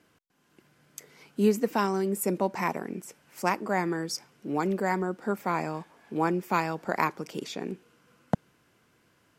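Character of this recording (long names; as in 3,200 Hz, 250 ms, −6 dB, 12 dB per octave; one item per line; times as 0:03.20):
background noise floor −67 dBFS
spectral slope −5.5 dB per octave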